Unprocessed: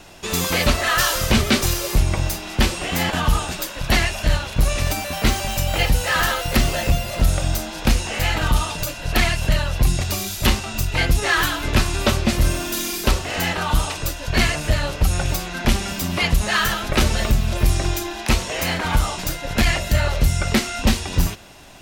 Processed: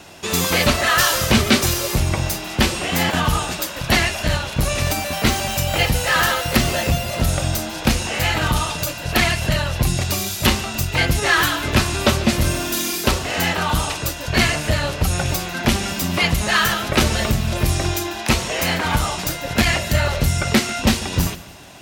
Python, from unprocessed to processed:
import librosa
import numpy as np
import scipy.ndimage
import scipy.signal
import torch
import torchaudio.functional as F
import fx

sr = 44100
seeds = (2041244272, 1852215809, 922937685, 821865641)

y = scipy.signal.sosfilt(scipy.signal.butter(2, 73.0, 'highpass', fs=sr, output='sos'), x)
y = fx.echo_feedback(y, sr, ms=145, feedback_pct=38, wet_db=-18)
y = y * librosa.db_to_amplitude(2.5)